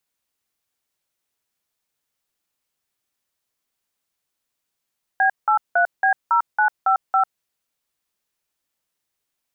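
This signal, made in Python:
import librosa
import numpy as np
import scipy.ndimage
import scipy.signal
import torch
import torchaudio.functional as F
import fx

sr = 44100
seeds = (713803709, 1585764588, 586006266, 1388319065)

y = fx.dtmf(sr, digits='B83B0955', tone_ms=98, gap_ms=179, level_db=-16.5)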